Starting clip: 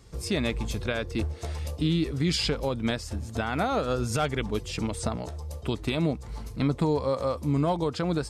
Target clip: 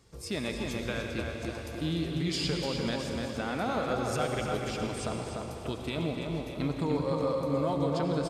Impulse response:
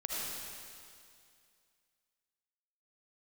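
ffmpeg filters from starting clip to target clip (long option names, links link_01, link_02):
-filter_complex "[0:a]lowshelf=frequency=74:gain=-10.5,asplit=2[link_01][link_02];[link_02]adelay=296,lowpass=frequency=3300:poles=1,volume=-3.5dB,asplit=2[link_03][link_04];[link_04]adelay=296,lowpass=frequency=3300:poles=1,volume=0.55,asplit=2[link_05][link_06];[link_06]adelay=296,lowpass=frequency=3300:poles=1,volume=0.55,asplit=2[link_07][link_08];[link_08]adelay=296,lowpass=frequency=3300:poles=1,volume=0.55,asplit=2[link_09][link_10];[link_10]adelay=296,lowpass=frequency=3300:poles=1,volume=0.55,asplit=2[link_11][link_12];[link_12]adelay=296,lowpass=frequency=3300:poles=1,volume=0.55,asplit=2[link_13][link_14];[link_14]adelay=296,lowpass=frequency=3300:poles=1,volume=0.55,asplit=2[link_15][link_16];[link_16]adelay=296,lowpass=frequency=3300:poles=1,volume=0.55[link_17];[link_01][link_03][link_05][link_07][link_09][link_11][link_13][link_15][link_17]amix=inputs=9:normalize=0,asplit=2[link_18][link_19];[1:a]atrim=start_sample=2205,asetrate=37926,aresample=44100[link_20];[link_19][link_20]afir=irnorm=-1:irlink=0,volume=-5dB[link_21];[link_18][link_21]amix=inputs=2:normalize=0,volume=-9dB"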